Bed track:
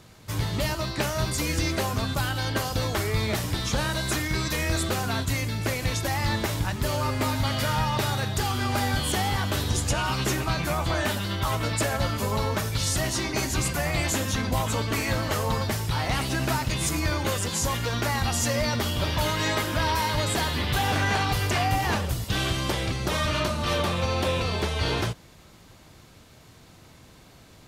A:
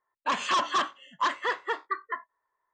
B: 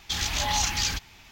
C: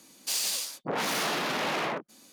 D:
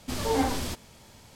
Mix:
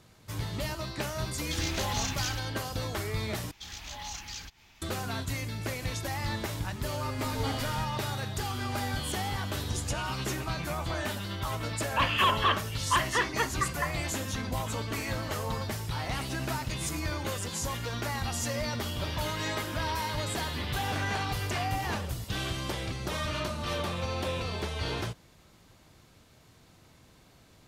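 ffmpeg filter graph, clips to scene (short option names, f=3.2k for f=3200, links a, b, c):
-filter_complex "[2:a]asplit=2[a][b];[0:a]volume=-7dB[c];[b]acompressor=mode=upward:threshold=-34dB:ratio=2.5:attack=3.2:release=140:knee=2.83:detection=peak[d];[1:a]highshelf=f=4.1k:t=q:w=3:g=-11.5[e];[c]asplit=2[f][g];[f]atrim=end=3.514[h];[d]atrim=end=1.31,asetpts=PTS-STARTPTS,volume=-14.5dB[i];[g]atrim=start=4.816[j];[a]atrim=end=1.31,asetpts=PTS-STARTPTS,volume=-8dB,afade=t=in:d=0.004:c=hsin,afade=t=out:st=1.306:d=0.004:c=hsin,adelay=1410[k];[4:a]atrim=end=1.35,asetpts=PTS-STARTPTS,volume=-11dB,afade=t=in:d=0.004:c=hsin,afade=t=out:st=1.346:d=0.004:c=hsin,adelay=7100[l];[e]atrim=end=2.73,asetpts=PTS-STARTPTS,volume=-1dB,afade=t=in:d=0.004:c=hsin,afade=t=out:st=2.726:d=0.004:c=hsin,adelay=515970S[m];[h][i]acrossfade=d=0.004:c1=hsin:c2=hsin[n];[n][j]acrossfade=d=0.004:c1=hsin:c2=hsin[o];[o][k][l][m]amix=inputs=4:normalize=0"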